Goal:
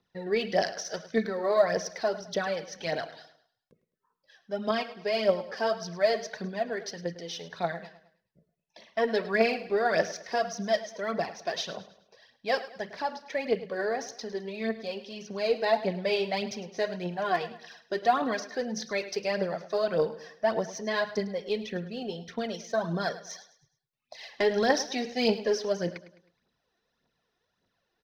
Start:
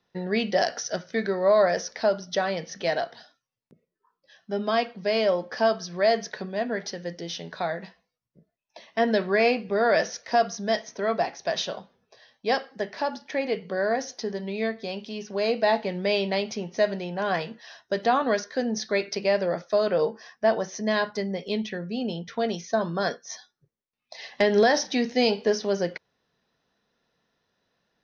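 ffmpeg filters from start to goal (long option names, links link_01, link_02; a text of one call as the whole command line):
ffmpeg -i in.wav -af "aphaser=in_gain=1:out_gain=1:delay=2.9:decay=0.59:speed=1.7:type=triangular,aecho=1:1:105|210|315|420:0.168|0.0688|0.0282|0.0116,volume=-5.5dB" out.wav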